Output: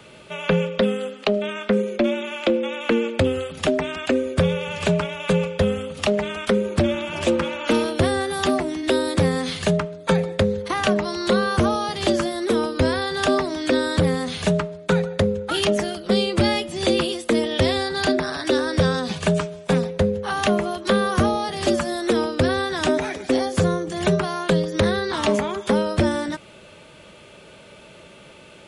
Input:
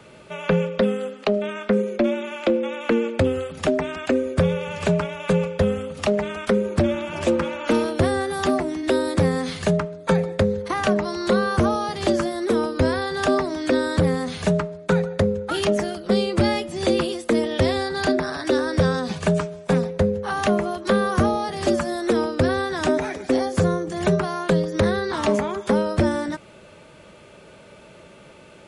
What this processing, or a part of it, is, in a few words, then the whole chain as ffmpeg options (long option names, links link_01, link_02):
presence and air boost: -af "equalizer=frequency=3200:width_type=o:width=0.95:gain=5.5,highshelf=frequency=9300:gain=6"